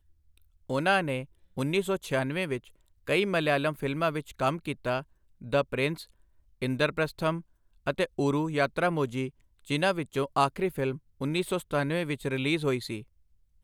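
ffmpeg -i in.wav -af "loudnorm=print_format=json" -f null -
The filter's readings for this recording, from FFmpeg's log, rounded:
"input_i" : "-29.6",
"input_tp" : "-11.0",
"input_lra" : "2.1",
"input_thresh" : "-40.1",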